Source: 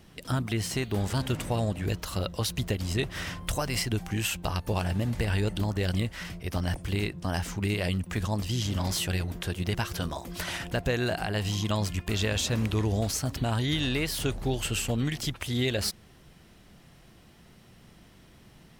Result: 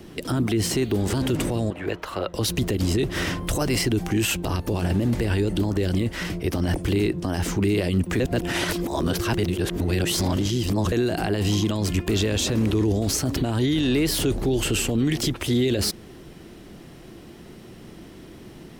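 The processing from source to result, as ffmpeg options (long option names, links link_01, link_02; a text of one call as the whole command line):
ffmpeg -i in.wav -filter_complex "[0:a]asettb=1/sr,asplit=3[link_01][link_02][link_03];[link_01]atrim=end=1.704[link_04];[link_02]atrim=start=1.7:end=2.34,asetpts=PTS-STARTPTS,afade=type=in:duration=0.004:curve=qsin,afade=type=out:start_time=0.636:duration=0.004:curve=qsin,acrossover=split=550 2800:gain=0.178 1 0.158[link_05][link_06][link_07];[link_05][link_06][link_07]amix=inputs=3:normalize=0[link_08];[link_03]atrim=start=2.336[link_09];[link_04][link_08]acrossfade=duration=0.004:curve1=hsin:curve2=qsin[link_10];[link_10][link_09]acrossfade=duration=0.004:curve1=qsin:curve2=hsin,asplit=3[link_11][link_12][link_13];[link_11]atrim=end=8.202[link_14];[link_12]atrim=start=8.198:end=10.922,asetpts=PTS-STARTPTS,areverse[link_15];[link_13]atrim=start=10.918[link_16];[link_14][link_15]acrossfade=duration=0.004:curve1=hsin:curve2=hsin[link_17];[link_17][link_16]acrossfade=duration=0.004:curve1=hsin:curve2=hsin,equalizer=frequency=340:width=1.3:gain=11.5,acrossover=split=290|3000[link_18][link_19][link_20];[link_19]acompressor=threshold=-26dB:ratio=6[link_21];[link_18][link_21][link_20]amix=inputs=3:normalize=0,alimiter=limit=-22dB:level=0:latency=1:release=19,volume=7.5dB" out.wav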